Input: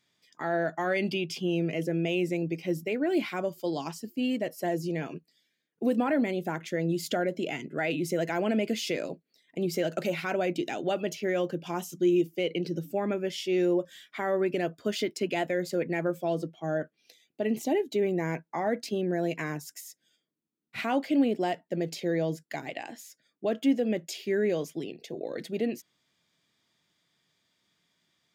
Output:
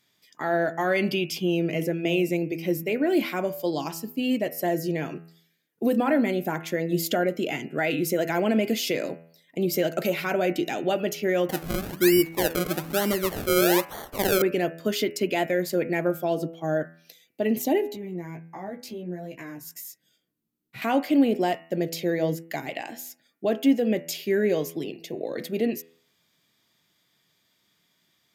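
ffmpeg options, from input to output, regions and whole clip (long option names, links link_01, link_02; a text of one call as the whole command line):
ffmpeg -i in.wav -filter_complex "[0:a]asettb=1/sr,asplit=3[link_01][link_02][link_03];[link_01]atrim=end=11.494[link_04];[link_02]atrim=start=11.49:end=14.42,asetpts=PTS-STARTPTS,afade=type=in:duration=0.004:curve=qsin,afade=type=out:start_time=2.926:duration=0.004:curve=qsin,acompressor=mode=upward:threshold=-32dB:ratio=2.5:attack=3.2:release=140:knee=2.83:detection=peak,acrusher=samples=33:mix=1:aa=0.000001:lfo=1:lforange=33:lforate=1.1[link_05];[link_03]atrim=start=14.416[link_06];[link_04][link_05]acrossfade=duration=0.004:curve1=hsin:curve2=qsin[link_07];[link_07][link_06]acrossfade=duration=0.004:curve1=qsin:curve2=hsin,asettb=1/sr,asplit=3[link_08][link_09][link_10];[link_08]atrim=end=17.924[link_11];[link_09]atrim=start=17.92:end=20.82,asetpts=PTS-STARTPTS,afade=type=in:duration=0.004:curve=qsin,afade=type=out:start_time=2.896:duration=0.004:curve=qsin,lowshelf=frequency=240:gain=11,acompressor=threshold=-42dB:ratio=2:attack=3.2:release=140:knee=1:detection=peak,flanger=delay=15.5:depth=2.1:speed=1.4[link_12];[link_10]atrim=start=20.816[link_13];[link_11][link_12]acrossfade=duration=0.004:curve1=hsin:curve2=qsin[link_14];[link_14][link_13]acrossfade=duration=0.004:curve1=qsin:curve2=hsin,equalizer=frequency=13000:width=2:gain=13,bandreject=frequency=82.8:width_type=h:width=4,bandreject=frequency=165.6:width_type=h:width=4,bandreject=frequency=248.4:width_type=h:width=4,bandreject=frequency=331.2:width_type=h:width=4,bandreject=frequency=414:width_type=h:width=4,bandreject=frequency=496.8:width_type=h:width=4,bandreject=frequency=579.6:width_type=h:width=4,bandreject=frequency=662.4:width_type=h:width=4,bandreject=frequency=745.2:width_type=h:width=4,bandreject=frequency=828:width_type=h:width=4,bandreject=frequency=910.8:width_type=h:width=4,bandreject=frequency=993.6:width_type=h:width=4,bandreject=frequency=1076.4:width_type=h:width=4,bandreject=frequency=1159.2:width_type=h:width=4,bandreject=frequency=1242:width_type=h:width=4,bandreject=frequency=1324.8:width_type=h:width=4,bandreject=frequency=1407.6:width_type=h:width=4,bandreject=frequency=1490.4:width_type=h:width=4,bandreject=frequency=1573.2:width_type=h:width=4,bandreject=frequency=1656:width_type=h:width=4,bandreject=frequency=1738.8:width_type=h:width=4,bandreject=frequency=1821.6:width_type=h:width=4,bandreject=frequency=1904.4:width_type=h:width=4,bandreject=frequency=1987.2:width_type=h:width=4,bandreject=frequency=2070:width_type=h:width=4,bandreject=frequency=2152.8:width_type=h:width=4,bandreject=frequency=2235.6:width_type=h:width=4,bandreject=frequency=2318.4:width_type=h:width=4,bandreject=frequency=2401.2:width_type=h:width=4,bandreject=frequency=2484:width_type=h:width=4,bandreject=frequency=2566.8:width_type=h:width=4,bandreject=frequency=2649.6:width_type=h:width=4,bandreject=frequency=2732.4:width_type=h:width=4,bandreject=frequency=2815.2:width_type=h:width=4,bandreject=frequency=2898:width_type=h:width=4,volume=4.5dB" out.wav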